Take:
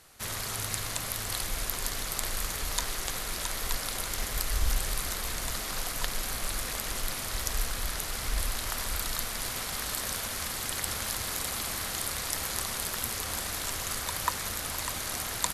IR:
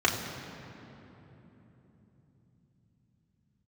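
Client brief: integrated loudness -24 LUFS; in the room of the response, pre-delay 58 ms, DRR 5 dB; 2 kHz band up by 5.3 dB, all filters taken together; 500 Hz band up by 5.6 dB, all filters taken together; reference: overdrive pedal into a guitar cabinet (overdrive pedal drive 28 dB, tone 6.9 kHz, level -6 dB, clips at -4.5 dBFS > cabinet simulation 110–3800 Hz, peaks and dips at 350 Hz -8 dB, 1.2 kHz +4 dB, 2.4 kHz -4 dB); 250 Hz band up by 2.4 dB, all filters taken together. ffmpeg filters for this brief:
-filter_complex "[0:a]equalizer=f=250:t=o:g=3.5,equalizer=f=500:t=o:g=7,equalizer=f=2000:t=o:g=7,asplit=2[s0][s1];[1:a]atrim=start_sample=2205,adelay=58[s2];[s1][s2]afir=irnorm=-1:irlink=0,volume=0.112[s3];[s0][s3]amix=inputs=2:normalize=0,asplit=2[s4][s5];[s5]highpass=f=720:p=1,volume=25.1,asoftclip=type=tanh:threshold=0.596[s6];[s4][s6]amix=inputs=2:normalize=0,lowpass=f=6900:p=1,volume=0.501,highpass=110,equalizer=f=350:t=q:w=4:g=-8,equalizer=f=1200:t=q:w=4:g=4,equalizer=f=2400:t=q:w=4:g=-4,lowpass=f=3800:w=0.5412,lowpass=f=3800:w=1.3066,volume=0.376"

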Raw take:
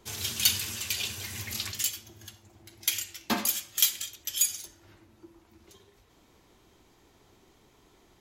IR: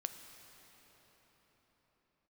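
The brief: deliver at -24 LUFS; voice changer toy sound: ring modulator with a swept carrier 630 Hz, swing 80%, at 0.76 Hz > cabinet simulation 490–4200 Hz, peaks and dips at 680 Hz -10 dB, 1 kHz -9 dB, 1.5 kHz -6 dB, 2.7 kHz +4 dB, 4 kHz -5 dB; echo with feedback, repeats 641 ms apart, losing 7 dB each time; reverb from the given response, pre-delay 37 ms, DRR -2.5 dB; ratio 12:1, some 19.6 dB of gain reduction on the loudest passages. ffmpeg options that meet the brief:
-filter_complex "[0:a]acompressor=threshold=0.01:ratio=12,aecho=1:1:641|1282|1923|2564|3205:0.447|0.201|0.0905|0.0407|0.0183,asplit=2[s0][s1];[1:a]atrim=start_sample=2205,adelay=37[s2];[s1][s2]afir=irnorm=-1:irlink=0,volume=1.58[s3];[s0][s3]amix=inputs=2:normalize=0,aeval=exprs='val(0)*sin(2*PI*630*n/s+630*0.8/0.76*sin(2*PI*0.76*n/s))':c=same,highpass=490,equalizer=f=680:t=q:w=4:g=-10,equalizer=f=1000:t=q:w=4:g=-9,equalizer=f=1500:t=q:w=4:g=-6,equalizer=f=2700:t=q:w=4:g=4,equalizer=f=4000:t=q:w=4:g=-5,lowpass=f=4200:w=0.5412,lowpass=f=4200:w=1.3066,volume=15.8"

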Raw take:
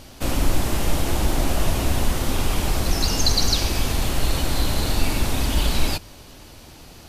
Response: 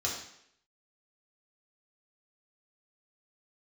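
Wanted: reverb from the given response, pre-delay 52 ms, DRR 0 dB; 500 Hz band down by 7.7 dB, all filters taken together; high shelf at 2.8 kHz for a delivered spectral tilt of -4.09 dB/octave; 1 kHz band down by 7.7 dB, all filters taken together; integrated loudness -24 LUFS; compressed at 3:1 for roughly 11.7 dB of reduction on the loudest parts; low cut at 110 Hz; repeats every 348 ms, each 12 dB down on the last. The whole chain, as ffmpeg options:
-filter_complex "[0:a]highpass=110,equalizer=f=500:t=o:g=-8.5,equalizer=f=1000:t=o:g=-6.5,highshelf=f=2800:g=-4,acompressor=threshold=0.0158:ratio=3,aecho=1:1:348|696|1044:0.251|0.0628|0.0157,asplit=2[s0][s1];[1:a]atrim=start_sample=2205,adelay=52[s2];[s1][s2]afir=irnorm=-1:irlink=0,volume=0.501[s3];[s0][s3]amix=inputs=2:normalize=0,volume=2.82"

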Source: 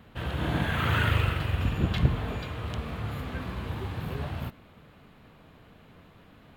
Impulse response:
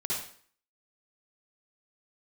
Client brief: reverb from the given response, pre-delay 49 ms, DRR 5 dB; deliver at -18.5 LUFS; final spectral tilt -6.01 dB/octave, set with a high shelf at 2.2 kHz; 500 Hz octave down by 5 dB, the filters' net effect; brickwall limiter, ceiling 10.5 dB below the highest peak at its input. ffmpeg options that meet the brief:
-filter_complex "[0:a]equalizer=f=500:t=o:g=-6,highshelf=f=2200:g=-8,alimiter=limit=0.1:level=0:latency=1,asplit=2[s0][s1];[1:a]atrim=start_sample=2205,adelay=49[s2];[s1][s2]afir=irnorm=-1:irlink=0,volume=0.299[s3];[s0][s3]amix=inputs=2:normalize=0,volume=4.22"

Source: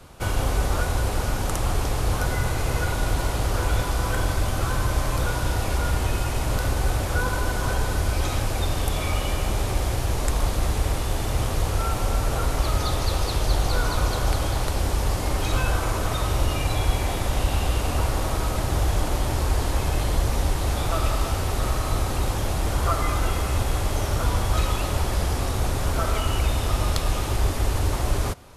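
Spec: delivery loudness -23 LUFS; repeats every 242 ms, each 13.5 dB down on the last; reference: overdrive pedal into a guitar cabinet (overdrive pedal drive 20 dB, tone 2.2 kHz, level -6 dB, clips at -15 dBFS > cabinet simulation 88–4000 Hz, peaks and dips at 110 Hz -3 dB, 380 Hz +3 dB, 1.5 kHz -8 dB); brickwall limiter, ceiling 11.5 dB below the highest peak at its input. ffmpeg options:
-filter_complex "[0:a]alimiter=limit=0.141:level=0:latency=1,aecho=1:1:242|484:0.211|0.0444,asplit=2[s0][s1];[s1]highpass=f=720:p=1,volume=10,asoftclip=type=tanh:threshold=0.178[s2];[s0][s2]amix=inputs=2:normalize=0,lowpass=f=2200:p=1,volume=0.501,highpass=88,equalizer=f=110:t=q:w=4:g=-3,equalizer=f=380:t=q:w=4:g=3,equalizer=f=1500:t=q:w=4:g=-8,lowpass=f=4000:w=0.5412,lowpass=f=4000:w=1.3066,volume=1.41"

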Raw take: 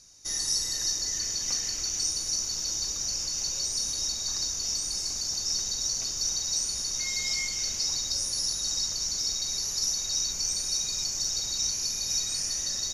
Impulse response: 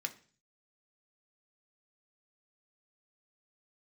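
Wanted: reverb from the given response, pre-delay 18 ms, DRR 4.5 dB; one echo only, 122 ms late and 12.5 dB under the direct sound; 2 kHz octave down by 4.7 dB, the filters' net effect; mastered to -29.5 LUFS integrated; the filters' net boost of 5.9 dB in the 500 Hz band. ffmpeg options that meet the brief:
-filter_complex "[0:a]equalizer=f=500:t=o:g=7.5,equalizer=f=2000:t=o:g=-5.5,aecho=1:1:122:0.237,asplit=2[s0][s1];[1:a]atrim=start_sample=2205,adelay=18[s2];[s1][s2]afir=irnorm=-1:irlink=0,volume=0.562[s3];[s0][s3]amix=inputs=2:normalize=0,volume=0.668"

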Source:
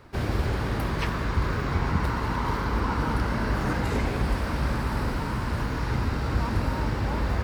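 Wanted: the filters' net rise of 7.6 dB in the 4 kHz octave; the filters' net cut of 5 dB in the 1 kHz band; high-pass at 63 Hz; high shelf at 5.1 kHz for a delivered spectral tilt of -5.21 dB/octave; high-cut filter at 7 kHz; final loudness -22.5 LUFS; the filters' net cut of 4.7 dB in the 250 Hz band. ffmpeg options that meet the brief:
-af "highpass=63,lowpass=7000,equalizer=f=250:t=o:g=-6,equalizer=f=1000:t=o:g=-6.5,equalizer=f=4000:t=o:g=8.5,highshelf=f=5100:g=4,volume=2.24"

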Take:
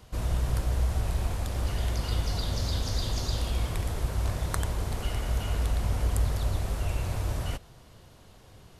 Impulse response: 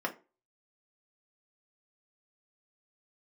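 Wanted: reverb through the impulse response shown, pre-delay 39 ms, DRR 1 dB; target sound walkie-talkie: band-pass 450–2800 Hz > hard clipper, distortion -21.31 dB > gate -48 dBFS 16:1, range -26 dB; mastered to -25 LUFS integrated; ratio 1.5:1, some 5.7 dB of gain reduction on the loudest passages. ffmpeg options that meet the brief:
-filter_complex "[0:a]acompressor=threshold=0.0126:ratio=1.5,asplit=2[s0][s1];[1:a]atrim=start_sample=2205,adelay=39[s2];[s1][s2]afir=irnorm=-1:irlink=0,volume=0.422[s3];[s0][s3]amix=inputs=2:normalize=0,highpass=450,lowpass=2800,asoftclip=type=hard:threshold=0.0299,agate=range=0.0501:threshold=0.00398:ratio=16,volume=8.91"

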